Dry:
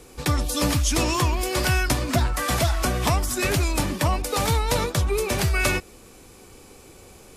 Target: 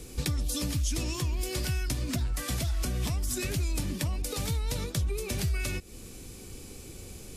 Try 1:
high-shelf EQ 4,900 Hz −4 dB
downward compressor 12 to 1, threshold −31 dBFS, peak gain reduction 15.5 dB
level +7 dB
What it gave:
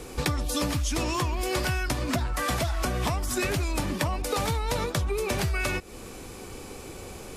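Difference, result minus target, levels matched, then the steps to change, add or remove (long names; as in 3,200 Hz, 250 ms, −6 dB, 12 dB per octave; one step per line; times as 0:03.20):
1,000 Hz band +10.5 dB
add after downward compressor: parametric band 950 Hz −14.5 dB 2.6 octaves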